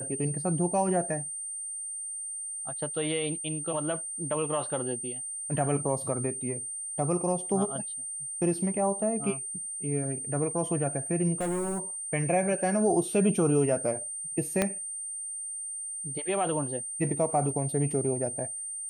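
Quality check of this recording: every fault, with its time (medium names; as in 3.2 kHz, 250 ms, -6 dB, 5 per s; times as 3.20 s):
whine 8.8 kHz -34 dBFS
11.40–11.80 s: clipped -27 dBFS
14.62 s: pop -10 dBFS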